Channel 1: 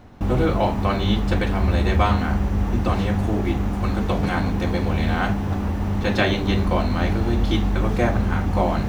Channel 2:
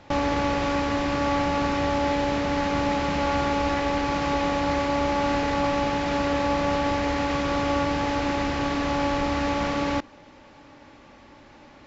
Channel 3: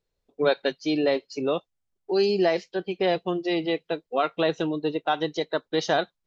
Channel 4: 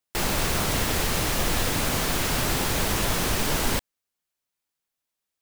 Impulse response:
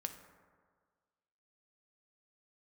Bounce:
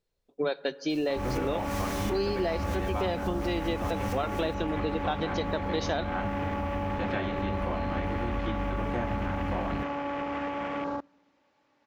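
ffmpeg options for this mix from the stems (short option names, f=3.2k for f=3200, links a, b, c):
-filter_complex "[0:a]acrossover=split=3200[a][b];[b]acompressor=threshold=-50dB:ratio=4:attack=1:release=60[c];[a][c]amix=inputs=2:normalize=0,adelay=950,volume=-9.5dB[d];[1:a]afwtdn=0.0316,highpass=f=300:p=1,alimiter=limit=-21dB:level=0:latency=1:release=76,adelay=1000,volume=-3dB,asplit=2[e][f];[f]volume=-20.5dB[g];[2:a]volume=-2.5dB,asplit=3[h][i][j];[i]volume=-10.5dB[k];[3:a]equalizer=f=5.9k:w=4:g=5.5,adelay=750,volume=-13.5dB,asplit=2[l][m];[m]volume=-15dB[n];[j]apad=whole_len=271980[o];[l][o]sidechaincompress=threshold=-46dB:ratio=8:attack=16:release=133[p];[4:a]atrim=start_sample=2205[q];[g][k][n]amix=inputs=3:normalize=0[r];[r][q]afir=irnorm=-1:irlink=0[s];[d][e][h][p][s]amix=inputs=5:normalize=0,acompressor=threshold=-26dB:ratio=4"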